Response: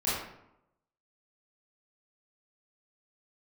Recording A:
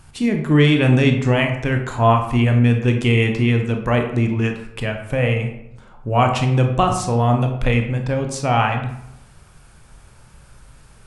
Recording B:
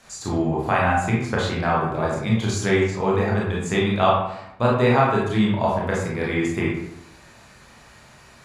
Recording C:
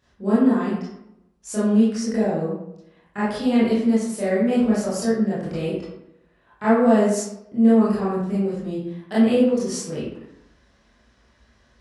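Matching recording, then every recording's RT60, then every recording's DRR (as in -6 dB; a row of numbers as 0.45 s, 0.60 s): C; 0.80 s, 0.80 s, 0.80 s; 4.0 dB, -5.0 dB, -11.0 dB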